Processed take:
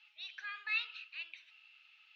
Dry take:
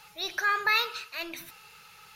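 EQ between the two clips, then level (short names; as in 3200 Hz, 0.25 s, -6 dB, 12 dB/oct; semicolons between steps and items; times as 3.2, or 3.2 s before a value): ladder band-pass 3200 Hz, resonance 60%; air absorption 150 m; high shelf 2100 Hz -10 dB; +7.0 dB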